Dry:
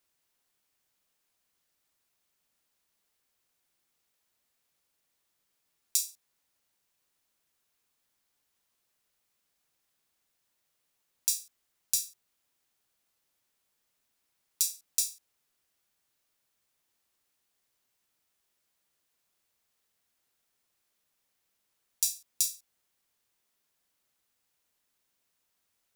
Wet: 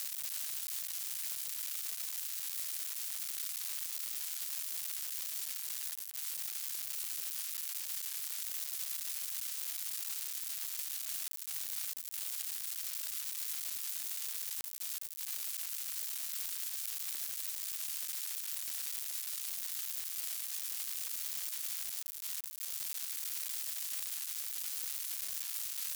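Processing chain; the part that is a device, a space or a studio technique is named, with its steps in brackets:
budget class-D amplifier (gap after every zero crossing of 0.11 ms; spike at every zero crossing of −12.5 dBFS)
level −6.5 dB

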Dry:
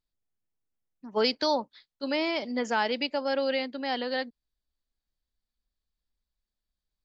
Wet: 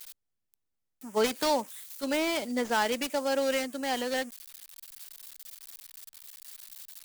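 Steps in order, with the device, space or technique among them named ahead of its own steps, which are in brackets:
budget class-D amplifier (gap after every zero crossing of 0.11 ms; spike at every zero crossing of −31.5 dBFS)

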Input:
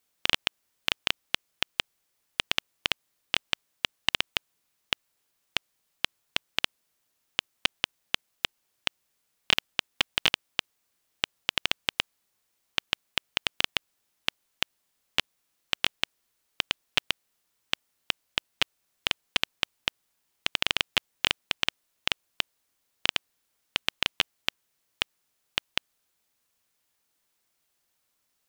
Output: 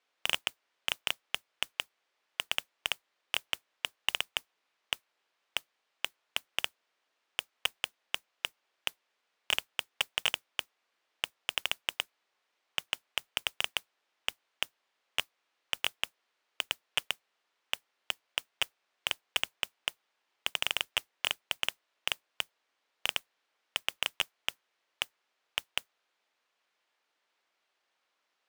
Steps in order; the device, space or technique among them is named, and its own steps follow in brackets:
carbon microphone (band-pass filter 450–3,300 Hz; soft clipping −17.5 dBFS, distortion −7 dB; noise that follows the level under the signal 19 dB)
level +4 dB

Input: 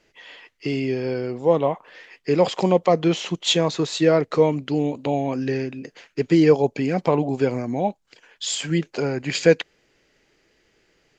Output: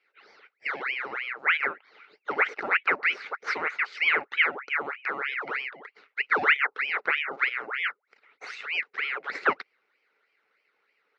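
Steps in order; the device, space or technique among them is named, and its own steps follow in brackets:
voice changer toy (ring modulator whose carrier an LFO sweeps 1,600 Hz, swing 75%, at 3.2 Hz; loudspeaker in its box 420–4,000 Hz, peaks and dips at 430 Hz +9 dB, 670 Hz −6 dB, 980 Hz −6 dB, 1,400 Hz +7 dB, 2,100 Hz +8 dB, 3,300 Hz −9 dB)
level −7 dB

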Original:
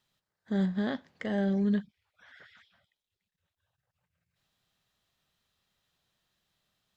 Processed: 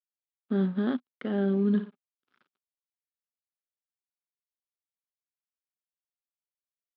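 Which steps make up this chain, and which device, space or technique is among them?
0:01.69–0:02.37: flutter between parallel walls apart 9.8 metres, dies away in 0.4 s
blown loudspeaker (dead-zone distortion −49.5 dBFS; loudspeaker in its box 160–3,600 Hz, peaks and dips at 170 Hz +3 dB, 250 Hz +9 dB, 380 Hz +7 dB, 640 Hz −4 dB, 1,300 Hz +7 dB, 1,900 Hz −8 dB)

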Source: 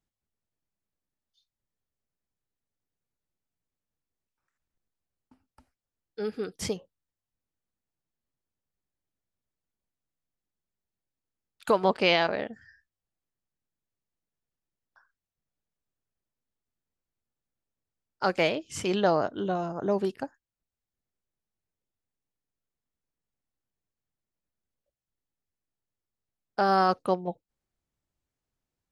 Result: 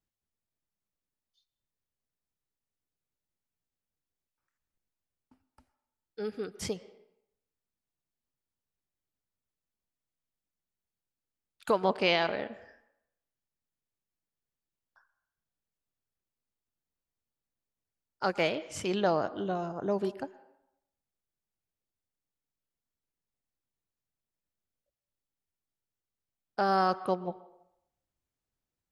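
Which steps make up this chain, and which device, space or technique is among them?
filtered reverb send (on a send: high-pass filter 300 Hz + low-pass filter 3,600 Hz 12 dB per octave + convolution reverb RT60 0.80 s, pre-delay 109 ms, DRR 16.5 dB)
on the sum: level −3.5 dB

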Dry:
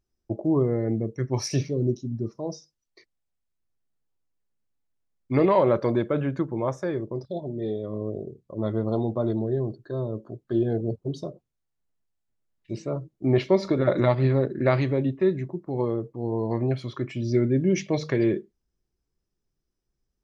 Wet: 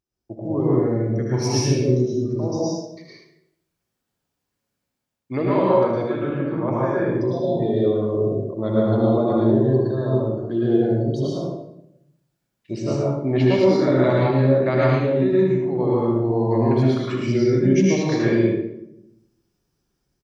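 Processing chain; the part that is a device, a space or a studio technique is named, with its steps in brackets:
0:06.23–0:06.98: Chebyshev low-pass filter 2,100 Hz, order 2
ambience of single reflections 64 ms −11 dB, 77 ms −7 dB
far laptop microphone (convolution reverb RT60 0.75 s, pre-delay 103 ms, DRR −5 dB; high-pass filter 130 Hz 6 dB per octave; automatic gain control gain up to 10.5 dB)
level −5 dB

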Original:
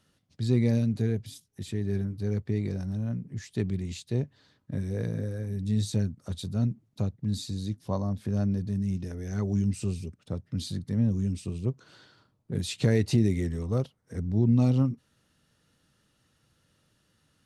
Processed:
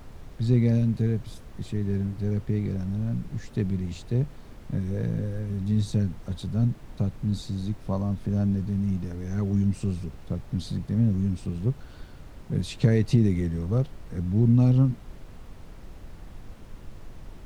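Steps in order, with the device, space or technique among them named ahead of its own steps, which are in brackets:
car interior (parametric band 150 Hz +6 dB 0.85 octaves; high-shelf EQ 4,900 Hz −7 dB; brown noise bed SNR 14 dB)

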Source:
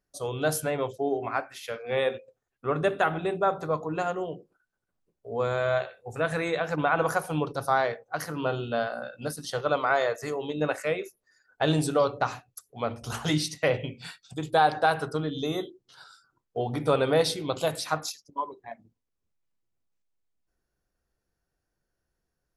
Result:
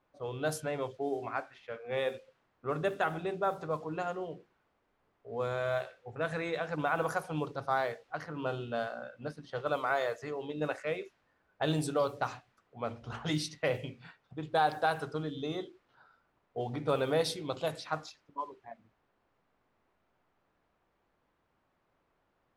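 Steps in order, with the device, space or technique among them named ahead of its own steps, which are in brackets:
cassette deck with a dynamic noise filter (white noise bed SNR 28 dB; low-pass that shuts in the quiet parts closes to 1,100 Hz, open at −20.5 dBFS)
level −6.5 dB

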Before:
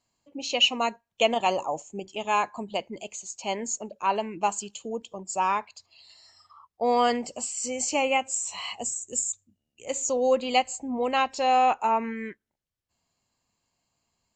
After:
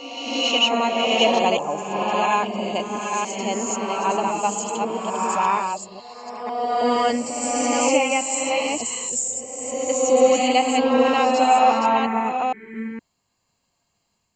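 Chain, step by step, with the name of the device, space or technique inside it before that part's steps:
delay that plays each chunk backwards 464 ms, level −4 dB
reverse reverb (reversed playback; convolution reverb RT60 1.9 s, pre-delay 61 ms, DRR 0 dB; reversed playback)
dynamic equaliser 260 Hz, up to +5 dB, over −39 dBFS, Q 1.3
level +1.5 dB

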